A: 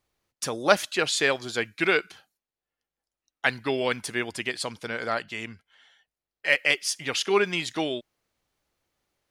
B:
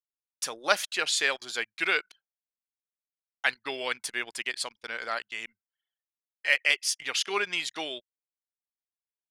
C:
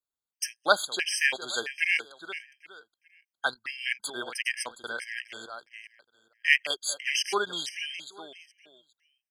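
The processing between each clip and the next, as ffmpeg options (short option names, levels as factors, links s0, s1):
-af "highpass=f=1300:p=1,anlmdn=0.1"
-af "aecho=1:1:412|824|1236:0.251|0.0678|0.0183,afftfilt=real='re*gt(sin(2*PI*1.5*pts/sr)*(1-2*mod(floor(b*sr/1024/1600),2)),0)':imag='im*gt(sin(2*PI*1.5*pts/sr)*(1-2*mod(floor(b*sr/1024/1600),2)),0)':win_size=1024:overlap=0.75,volume=1.41"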